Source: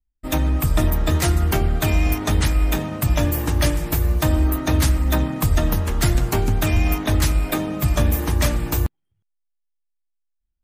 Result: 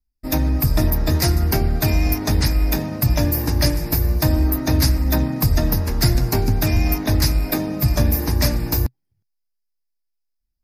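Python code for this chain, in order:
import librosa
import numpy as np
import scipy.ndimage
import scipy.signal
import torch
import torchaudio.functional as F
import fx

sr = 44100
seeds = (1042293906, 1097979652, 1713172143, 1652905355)

y = fx.graphic_eq_31(x, sr, hz=(125, 250, 1250, 3150, 5000, 8000, 12500), db=(5, 4, -6, -11, 12, -7, 8))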